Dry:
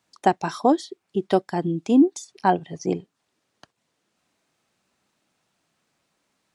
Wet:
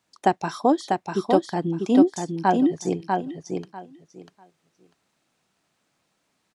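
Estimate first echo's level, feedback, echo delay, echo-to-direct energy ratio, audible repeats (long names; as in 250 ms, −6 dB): −4.0 dB, 18%, 645 ms, −4.0 dB, 3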